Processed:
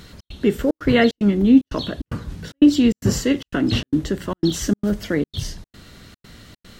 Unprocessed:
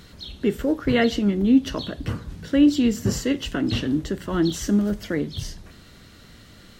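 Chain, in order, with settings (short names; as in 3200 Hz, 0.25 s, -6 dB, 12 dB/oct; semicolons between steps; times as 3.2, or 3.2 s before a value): step gate "xx.xxxx.x" 149 bpm -60 dB; gain +4 dB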